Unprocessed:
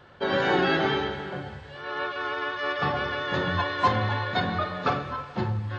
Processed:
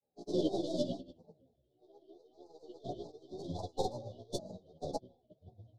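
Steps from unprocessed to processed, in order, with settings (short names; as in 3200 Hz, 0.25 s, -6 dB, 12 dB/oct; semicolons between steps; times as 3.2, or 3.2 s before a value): tracing distortion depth 0.13 ms; Chebyshev band-stop 940–4500 Hz, order 5; low shelf 100 Hz -8 dB; notches 50/100 Hz; grains, pitch spread up and down by 3 st; formant shift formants -4 st; chorus voices 2, 0.83 Hz, delay 14 ms, depth 3.1 ms; upward expander 2.5:1, over -44 dBFS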